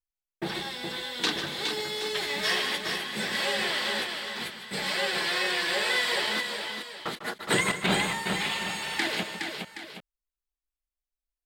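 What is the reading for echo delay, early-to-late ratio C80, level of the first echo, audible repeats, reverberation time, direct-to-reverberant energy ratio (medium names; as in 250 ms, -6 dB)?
149 ms, no reverb, -11.0 dB, 4, no reverb, no reverb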